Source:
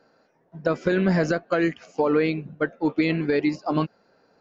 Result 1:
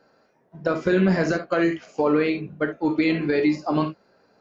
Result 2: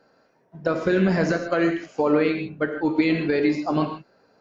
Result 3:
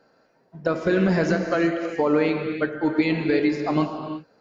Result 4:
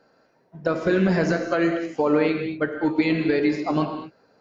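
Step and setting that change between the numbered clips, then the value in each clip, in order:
non-linear reverb, gate: 90, 180, 390, 260 ms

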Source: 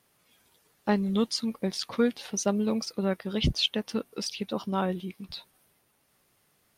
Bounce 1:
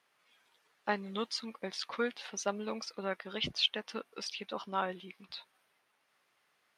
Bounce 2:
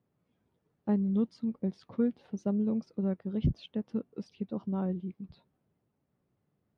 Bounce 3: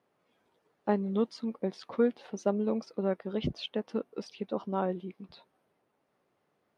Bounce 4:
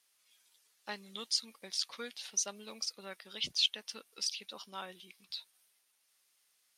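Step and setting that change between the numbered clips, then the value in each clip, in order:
band-pass, frequency: 1700, 140, 490, 6200 Hz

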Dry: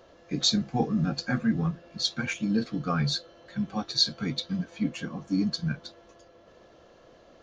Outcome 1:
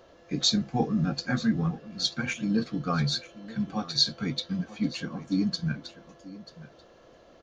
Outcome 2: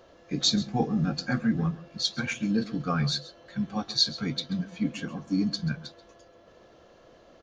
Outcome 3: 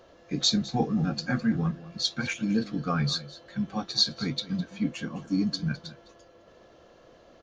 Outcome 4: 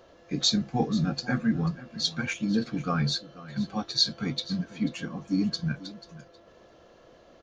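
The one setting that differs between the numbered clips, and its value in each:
echo, time: 0.937, 0.134, 0.208, 0.488 s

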